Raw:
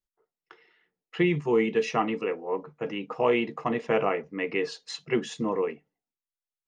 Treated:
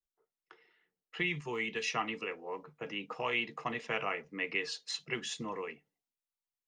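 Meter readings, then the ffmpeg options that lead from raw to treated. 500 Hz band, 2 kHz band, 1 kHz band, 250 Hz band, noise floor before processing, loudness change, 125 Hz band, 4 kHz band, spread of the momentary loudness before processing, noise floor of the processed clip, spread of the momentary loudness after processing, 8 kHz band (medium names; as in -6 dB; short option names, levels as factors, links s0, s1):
-14.0 dB, -1.5 dB, -8.0 dB, -14.0 dB, under -85 dBFS, -8.5 dB, -11.5 dB, 0.0 dB, 9 LU, under -85 dBFS, 9 LU, no reading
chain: -filter_complex "[0:a]acrossover=split=120|880|1300[s0][s1][s2][s3];[s1]acompressor=threshold=0.0178:ratio=4[s4];[s0][s4][s2][s3]amix=inputs=4:normalize=0,adynamicequalizer=threshold=0.00562:dfrequency=1800:dqfactor=0.7:tfrequency=1800:tqfactor=0.7:attack=5:release=100:ratio=0.375:range=3.5:mode=boostabove:tftype=highshelf,volume=0.501"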